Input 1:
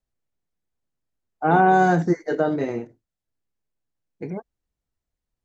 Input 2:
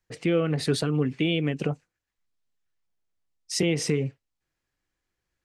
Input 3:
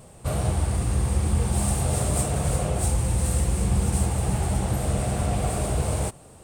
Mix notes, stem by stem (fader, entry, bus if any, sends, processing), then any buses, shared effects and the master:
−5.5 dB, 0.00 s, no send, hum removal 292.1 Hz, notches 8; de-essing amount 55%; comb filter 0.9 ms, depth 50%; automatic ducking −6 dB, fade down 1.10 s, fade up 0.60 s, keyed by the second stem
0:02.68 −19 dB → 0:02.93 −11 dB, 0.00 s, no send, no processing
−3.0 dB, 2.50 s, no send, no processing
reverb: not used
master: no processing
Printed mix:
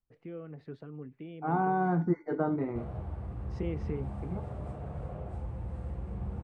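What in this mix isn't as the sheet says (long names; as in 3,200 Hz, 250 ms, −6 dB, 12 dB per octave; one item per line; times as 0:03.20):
stem 3 −3.0 dB → −14.5 dB
master: extra low-pass filter 1,400 Hz 12 dB per octave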